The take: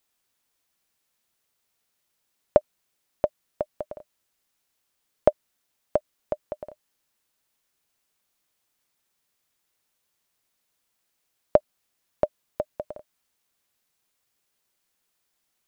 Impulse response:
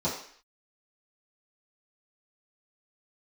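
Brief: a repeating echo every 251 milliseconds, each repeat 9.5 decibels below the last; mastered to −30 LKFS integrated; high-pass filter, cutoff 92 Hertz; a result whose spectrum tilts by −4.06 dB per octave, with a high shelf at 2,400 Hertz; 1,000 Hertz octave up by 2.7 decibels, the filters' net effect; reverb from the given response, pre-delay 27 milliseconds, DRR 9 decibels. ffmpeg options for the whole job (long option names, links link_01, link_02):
-filter_complex "[0:a]highpass=92,equalizer=frequency=1000:width_type=o:gain=5.5,highshelf=frequency=2400:gain=-8.5,aecho=1:1:251|502|753|1004:0.335|0.111|0.0365|0.012,asplit=2[link_01][link_02];[1:a]atrim=start_sample=2205,adelay=27[link_03];[link_02][link_03]afir=irnorm=-1:irlink=0,volume=-18dB[link_04];[link_01][link_04]amix=inputs=2:normalize=0,volume=-2.5dB"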